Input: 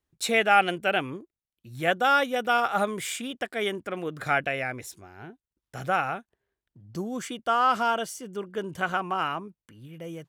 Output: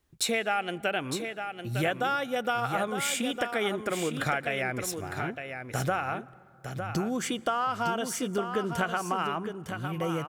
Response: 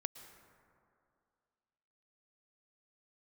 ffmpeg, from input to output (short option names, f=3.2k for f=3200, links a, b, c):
-filter_complex "[0:a]acompressor=threshold=-36dB:ratio=6,aecho=1:1:907:0.422,asplit=2[a][b];[1:a]atrim=start_sample=2205,lowshelf=f=120:g=8.5[c];[b][c]afir=irnorm=-1:irlink=0,volume=-9dB[d];[a][d]amix=inputs=2:normalize=0,volume=7dB"